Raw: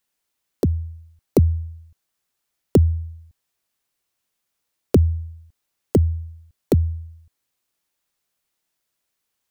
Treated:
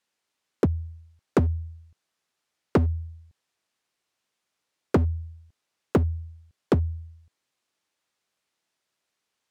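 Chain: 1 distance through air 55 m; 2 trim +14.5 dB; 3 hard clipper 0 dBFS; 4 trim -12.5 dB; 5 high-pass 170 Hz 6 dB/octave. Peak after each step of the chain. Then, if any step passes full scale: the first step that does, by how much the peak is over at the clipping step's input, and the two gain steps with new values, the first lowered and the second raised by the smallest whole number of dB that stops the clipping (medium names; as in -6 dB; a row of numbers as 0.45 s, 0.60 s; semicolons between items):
-5.0 dBFS, +9.5 dBFS, 0.0 dBFS, -12.5 dBFS, -9.0 dBFS; step 2, 9.5 dB; step 2 +4.5 dB, step 4 -2.5 dB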